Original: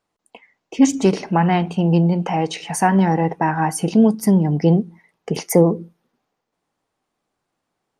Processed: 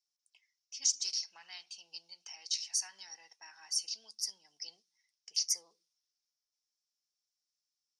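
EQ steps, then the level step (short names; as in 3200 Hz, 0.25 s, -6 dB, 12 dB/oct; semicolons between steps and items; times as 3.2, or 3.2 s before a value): high shelf 6500 Hz -8 dB; dynamic EQ 4400 Hz, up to +7 dB, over -53 dBFS, Q 4; ladder band-pass 5800 Hz, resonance 75%; +6.0 dB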